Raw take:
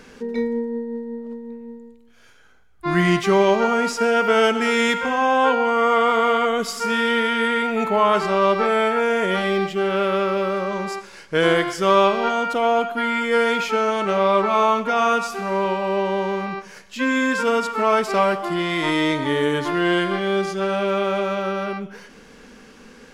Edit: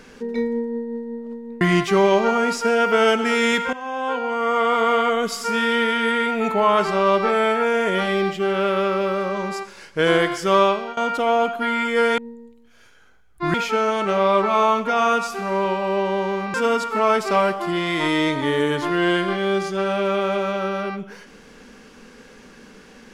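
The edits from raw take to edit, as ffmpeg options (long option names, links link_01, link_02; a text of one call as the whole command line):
ffmpeg -i in.wav -filter_complex "[0:a]asplit=7[link_01][link_02][link_03][link_04][link_05][link_06][link_07];[link_01]atrim=end=1.612[link_08];[link_02]atrim=start=2.968:end=5.09,asetpts=PTS-STARTPTS,afade=type=out:start_time=2.118:duration=0.004:curve=hsin:silence=0.199526[link_09];[link_03]atrim=start=5.09:end=12.33,asetpts=PTS-STARTPTS,afade=type=in:duration=1.18:silence=0.199526,afade=type=out:start_time=6.86:duration=0.38:silence=0.125893[link_10];[link_04]atrim=start=12.33:end=13.542,asetpts=PTS-STARTPTS,afade=type=in:duration=0.004:curve=hsin:silence=0.125893[link_11];[link_05]atrim=start=1.608:end=2.972[link_12];[link_06]atrim=start=13.538:end=16.542[link_13];[link_07]atrim=start=17.368[link_14];[link_09][link_10][link_11]concat=n=3:v=0:a=1[link_15];[link_08][link_15]acrossfade=duration=0.004:curve1=hsin:curve2=hsin[link_16];[link_16][link_12]acrossfade=duration=0.004:curve1=hsin:curve2=hsin[link_17];[link_17][link_13]acrossfade=duration=0.004:curve1=hsin:curve2=hsin[link_18];[link_18][link_14]acrossfade=duration=0.004:curve1=hsin:curve2=hsin" out.wav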